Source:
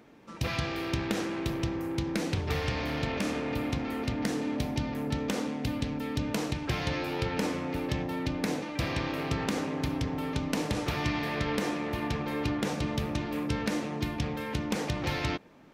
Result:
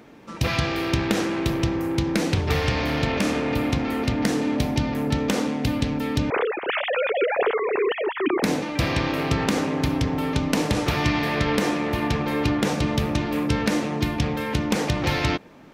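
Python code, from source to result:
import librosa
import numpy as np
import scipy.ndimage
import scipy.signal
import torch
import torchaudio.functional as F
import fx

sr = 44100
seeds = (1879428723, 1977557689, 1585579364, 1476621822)

y = fx.sine_speech(x, sr, at=(6.3, 8.43))
y = F.gain(torch.from_numpy(y), 8.0).numpy()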